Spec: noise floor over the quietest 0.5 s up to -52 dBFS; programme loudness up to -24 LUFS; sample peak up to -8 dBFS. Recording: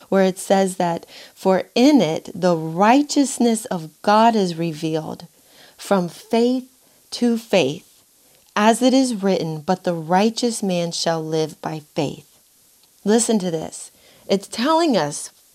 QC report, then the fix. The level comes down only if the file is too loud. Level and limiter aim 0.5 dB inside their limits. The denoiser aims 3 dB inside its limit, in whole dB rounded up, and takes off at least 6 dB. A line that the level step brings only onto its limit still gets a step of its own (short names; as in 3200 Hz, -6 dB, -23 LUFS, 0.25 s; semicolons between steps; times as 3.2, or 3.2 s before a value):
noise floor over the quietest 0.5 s -55 dBFS: OK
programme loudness -19.5 LUFS: fail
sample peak -4.0 dBFS: fail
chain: gain -5 dB